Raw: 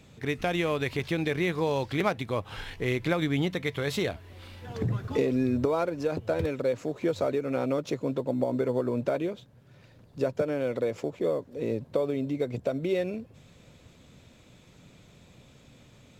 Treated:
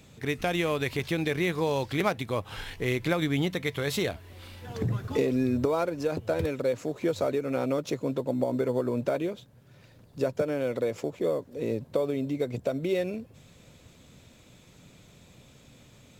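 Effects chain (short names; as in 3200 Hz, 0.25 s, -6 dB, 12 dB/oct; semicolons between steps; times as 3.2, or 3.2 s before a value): high shelf 7200 Hz +8 dB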